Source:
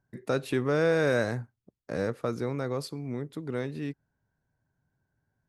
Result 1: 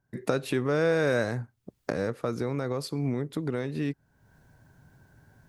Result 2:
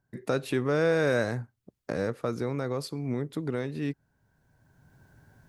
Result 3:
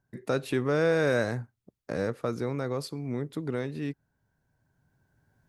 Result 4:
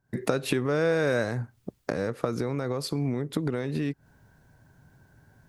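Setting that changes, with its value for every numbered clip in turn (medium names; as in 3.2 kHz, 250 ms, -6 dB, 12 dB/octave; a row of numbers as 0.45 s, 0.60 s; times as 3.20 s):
recorder AGC, rising by: 34 dB/s, 14 dB/s, 5.5 dB/s, 87 dB/s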